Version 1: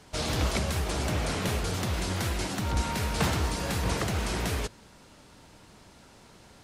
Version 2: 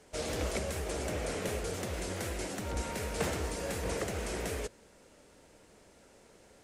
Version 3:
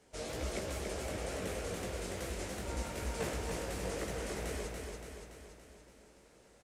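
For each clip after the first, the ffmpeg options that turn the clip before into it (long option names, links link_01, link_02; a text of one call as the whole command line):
ffmpeg -i in.wav -af "equalizer=frequency=125:width_type=o:width=1:gain=-5,equalizer=frequency=500:width_type=o:width=1:gain=9,equalizer=frequency=1000:width_type=o:width=1:gain=-4,equalizer=frequency=2000:width_type=o:width=1:gain=3,equalizer=frequency=4000:width_type=o:width=1:gain=-4,equalizer=frequency=8000:width_type=o:width=1:gain=5,volume=-7.5dB" out.wav
ffmpeg -i in.wav -filter_complex "[0:a]flanger=delay=15:depth=6.2:speed=2.2,asplit=2[link_01][link_02];[link_02]aecho=0:1:285|570|855|1140|1425|1710|1995|2280:0.631|0.366|0.212|0.123|0.0714|0.0414|0.024|0.0139[link_03];[link_01][link_03]amix=inputs=2:normalize=0,volume=-2.5dB" out.wav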